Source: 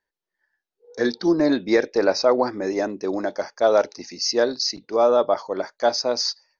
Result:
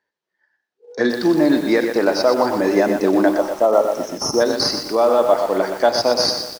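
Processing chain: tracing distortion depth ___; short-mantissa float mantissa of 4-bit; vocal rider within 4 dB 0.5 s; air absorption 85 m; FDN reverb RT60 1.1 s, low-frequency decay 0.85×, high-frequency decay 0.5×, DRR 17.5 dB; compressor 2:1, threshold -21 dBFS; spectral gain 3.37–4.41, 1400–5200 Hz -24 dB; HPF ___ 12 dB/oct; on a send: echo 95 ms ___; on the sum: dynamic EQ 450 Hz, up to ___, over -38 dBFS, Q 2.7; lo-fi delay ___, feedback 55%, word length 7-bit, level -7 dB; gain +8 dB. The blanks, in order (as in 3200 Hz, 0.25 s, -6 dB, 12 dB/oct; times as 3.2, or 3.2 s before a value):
0.041 ms, 120 Hz, -12 dB, -3 dB, 0.121 s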